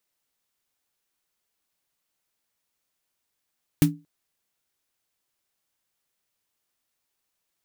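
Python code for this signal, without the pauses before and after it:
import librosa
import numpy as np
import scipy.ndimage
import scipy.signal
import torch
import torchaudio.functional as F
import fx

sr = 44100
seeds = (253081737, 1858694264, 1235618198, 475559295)

y = fx.drum_snare(sr, seeds[0], length_s=0.23, hz=160.0, second_hz=290.0, noise_db=-9.5, noise_from_hz=770.0, decay_s=0.27, noise_decay_s=0.12)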